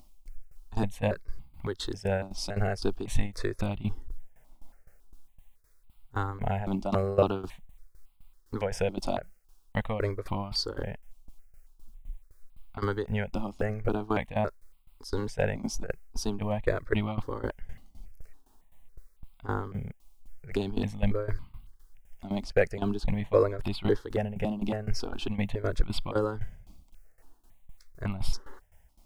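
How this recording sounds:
a quantiser's noise floor 12 bits, dither triangular
tremolo saw down 3.9 Hz, depth 85%
notches that jump at a steady rate 3.6 Hz 450–1,700 Hz

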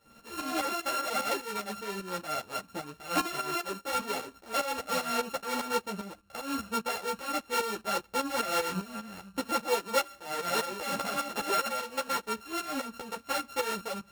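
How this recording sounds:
a buzz of ramps at a fixed pitch in blocks of 32 samples
tremolo saw up 5 Hz, depth 80%
a shimmering, thickened sound

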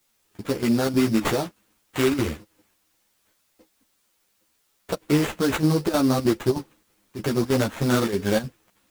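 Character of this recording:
aliases and images of a low sample rate 5,100 Hz, jitter 20%
chopped level 3.2 Hz, depth 65%, duty 80%
a quantiser's noise floor 12 bits, dither triangular
a shimmering, thickened sound

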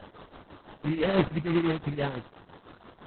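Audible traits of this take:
a quantiser's noise floor 8 bits, dither triangular
tremolo triangle 6 Hz, depth 80%
aliases and images of a low sample rate 2,400 Hz, jitter 20%
Opus

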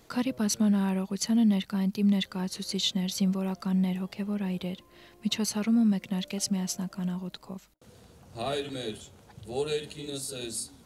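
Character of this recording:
background noise floor −57 dBFS
spectral slope −5.0 dB per octave

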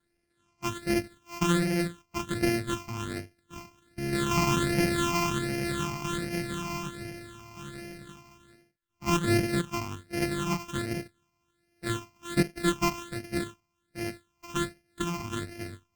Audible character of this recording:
a buzz of ramps at a fixed pitch in blocks of 128 samples
phaser sweep stages 8, 1.3 Hz, lowest notch 490–1,100 Hz
Opus

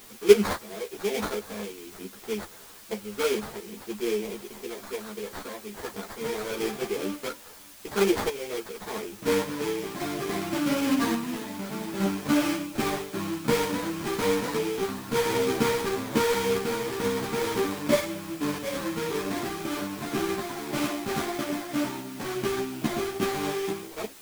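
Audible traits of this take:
aliases and images of a low sample rate 2,800 Hz, jitter 20%
sample-and-hold tremolo
a quantiser's noise floor 8 bits, dither triangular
a shimmering, thickened sound

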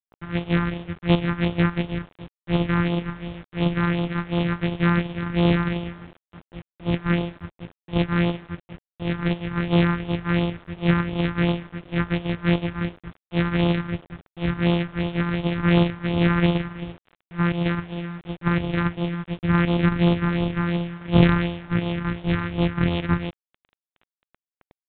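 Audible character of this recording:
a buzz of ramps at a fixed pitch in blocks of 256 samples
phaser sweep stages 4, 2.8 Hz, lowest notch 560–1,500 Hz
a quantiser's noise floor 8 bits, dither none
G.726

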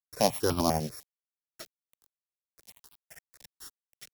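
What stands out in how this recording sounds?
a buzz of ramps at a fixed pitch in blocks of 8 samples
tremolo triangle 12 Hz, depth 40%
a quantiser's noise floor 8 bits, dither none
notches that jump at a steady rate 10 Hz 270–1,900 Hz

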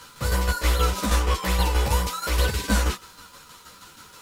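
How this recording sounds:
tremolo saw down 6.3 Hz, depth 60%
a quantiser's noise floor 10 bits, dither none
a shimmering, thickened sound

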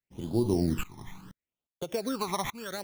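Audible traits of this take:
tremolo saw up 1.2 Hz, depth 90%
aliases and images of a low sample rate 5,000 Hz, jitter 0%
phaser sweep stages 12, 0.73 Hz, lowest notch 470–1,900 Hz

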